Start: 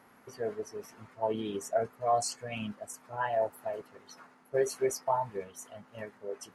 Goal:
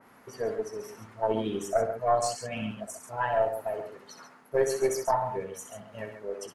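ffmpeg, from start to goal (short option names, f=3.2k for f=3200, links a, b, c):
-af "aecho=1:1:64.14|137:0.398|0.355,aeval=exprs='0.168*(cos(1*acos(clip(val(0)/0.168,-1,1)))-cos(1*PI/2))+0.0237*(cos(2*acos(clip(val(0)/0.168,-1,1)))-cos(2*PI/2))':c=same,adynamicequalizer=threshold=0.00355:dfrequency=2700:dqfactor=0.7:tfrequency=2700:tqfactor=0.7:attack=5:release=100:ratio=0.375:range=2:mode=cutabove:tftype=highshelf,volume=3dB"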